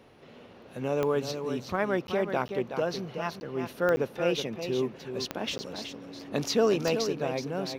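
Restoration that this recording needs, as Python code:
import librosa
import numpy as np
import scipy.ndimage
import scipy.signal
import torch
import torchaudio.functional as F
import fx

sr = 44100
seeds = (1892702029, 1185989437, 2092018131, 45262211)

y = fx.fix_declick_ar(x, sr, threshold=10.0)
y = fx.notch(y, sr, hz=280.0, q=30.0)
y = fx.fix_interpolate(y, sr, at_s=(2.07, 2.48, 3.4, 3.96, 5.58), length_ms=10.0)
y = fx.fix_echo_inverse(y, sr, delay_ms=374, level_db=-8.0)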